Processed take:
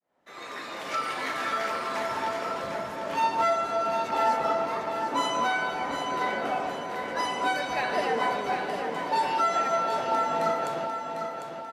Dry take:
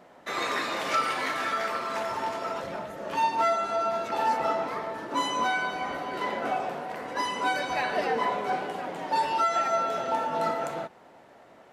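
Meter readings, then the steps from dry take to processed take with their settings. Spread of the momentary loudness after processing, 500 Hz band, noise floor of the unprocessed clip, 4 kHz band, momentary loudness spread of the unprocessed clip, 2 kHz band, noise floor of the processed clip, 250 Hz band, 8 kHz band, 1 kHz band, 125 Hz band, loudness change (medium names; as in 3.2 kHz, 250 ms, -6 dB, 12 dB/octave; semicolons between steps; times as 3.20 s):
8 LU, +1.0 dB, -54 dBFS, 0.0 dB, 9 LU, 0.0 dB, -39 dBFS, +0.5 dB, 0.0 dB, +0.5 dB, +1.0 dB, +0.5 dB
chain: fade-in on the opening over 1.55 s; on a send: feedback delay 750 ms, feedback 44%, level -7 dB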